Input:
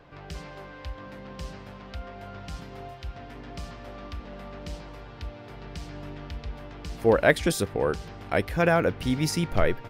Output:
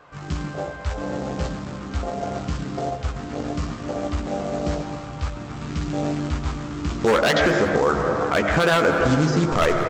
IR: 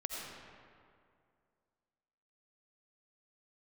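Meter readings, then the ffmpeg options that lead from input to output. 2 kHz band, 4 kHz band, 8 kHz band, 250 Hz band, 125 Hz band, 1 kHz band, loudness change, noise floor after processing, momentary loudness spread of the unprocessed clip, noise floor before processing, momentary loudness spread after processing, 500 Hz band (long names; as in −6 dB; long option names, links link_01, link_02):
+6.5 dB, +7.5 dB, +2.5 dB, +7.0 dB, +7.0 dB, +8.5 dB, +2.0 dB, −35 dBFS, 19 LU, −44 dBFS, 12 LU, +5.5 dB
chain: -filter_complex "[0:a]afwtdn=0.02,aresample=16000,acrusher=bits=5:mode=log:mix=0:aa=0.000001,aresample=44100,bandreject=frequency=50:width_type=h:width=6,bandreject=frequency=100:width_type=h:width=6,bandreject=frequency=150:width_type=h:width=6,bandreject=frequency=200:width_type=h:width=6,bandreject=frequency=250:width_type=h:width=6,bandreject=frequency=300:width_type=h:width=6,bandreject=frequency=350:width_type=h:width=6,acontrast=55,equalizer=frequency=1200:width=1.9:gain=9,asplit=2[link_01][link_02];[1:a]atrim=start_sample=2205[link_03];[link_02][link_03]afir=irnorm=-1:irlink=0,volume=-8.5dB[link_04];[link_01][link_04]amix=inputs=2:normalize=0,aeval=exprs='0.531*(abs(mod(val(0)/0.531+3,4)-2)-1)':channel_layout=same,asplit=4[link_05][link_06][link_07][link_08];[link_06]adelay=183,afreqshift=110,volume=-22dB[link_09];[link_07]adelay=366,afreqshift=220,volume=-29.1dB[link_10];[link_08]adelay=549,afreqshift=330,volume=-36.3dB[link_11];[link_05][link_09][link_10][link_11]amix=inputs=4:normalize=0,acompressor=threshold=-26dB:ratio=2,lowshelf=frequency=84:gain=-11.5,asplit=2[link_12][link_13];[link_13]adelay=14,volume=-6dB[link_14];[link_12][link_14]amix=inputs=2:normalize=0,alimiter=level_in=17dB:limit=-1dB:release=50:level=0:latency=1,volume=-8dB"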